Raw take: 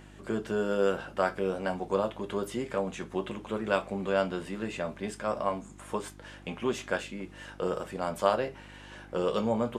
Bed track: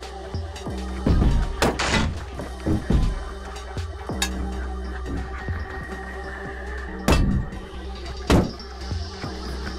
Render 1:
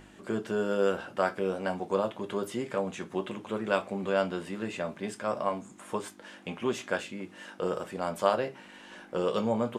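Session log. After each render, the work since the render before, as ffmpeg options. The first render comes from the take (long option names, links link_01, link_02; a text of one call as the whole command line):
ffmpeg -i in.wav -af "bandreject=frequency=50:width_type=h:width=4,bandreject=frequency=100:width_type=h:width=4,bandreject=frequency=150:width_type=h:width=4" out.wav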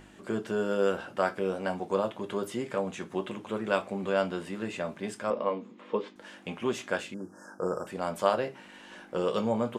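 ffmpeg -i in.wav -filter_complex "[0:a]asettb=1/sr,asplit=3[link_01][link_02][link_03];[link_01]atrim=end=5.304[link_04];[link_02]atrim=start=5.3:end=6.16,asetpts=PTS-STARTPTS,afade=type=in:duration=0.004:curve=qsin,afade=type=out:start_time=0.856:duration=0.004:curve=qsin,highpass=220,equalizer=frequency=230:width_type=q:width=4:gain=7,equalizer=frequency=480:width_type=q:width=4:gain=10,equalizer=frequency=710:width_type=q:width=4:gain=-8,equalizer=frequency=1500:width_type=q:width=4:gain=-7,lowpass=frequency=4000:width=0.5412,lowpass=frequency=4000:width=1.3066[link_05];[link_03]atrim=start=6.156[link_06];[link_04][link_05]acrossfade=duration=0.004:curve1=hsin:curve2=qsin[link_07];[link_07][link_06]acrossfade=duration=0.004:curve1=qsin:curve2=hsin,asettb=1/sr,asplit=3[link_08][link_09][link_10];[link_08]atrim=end=7.144[link_11];[link_09]atrim=start=7.14:end=7.87,asetpts=PTS-STARTPTS,afade=type=in:duration=0.004:curve=qsin,afade=type=out:start_time=0.726:duration=0.004:curve=qsin,asuperstop=centerf=2900:order=20:qfactor=0.87[link_12];[link_10]atrim=start=7.866[link_13];[link_11][link_12]acrossfade=duration=0.004:curve1=hsin:curve2=qsin[link_14];[link_14][link_13]acrossfade=duration=0.004:curve1=qsin:curve2=hsin" out.wav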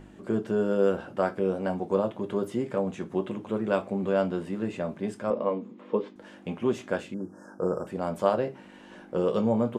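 ffmpeg -i in.wav -af "tiltshelf=frequency=850:gain=6" out.wav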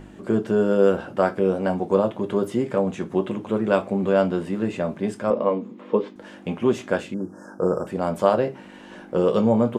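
ffmpeg -i in.wav -af "volume=6dB,alimiter=limit=-3dB:level=0:latency=1" out.wav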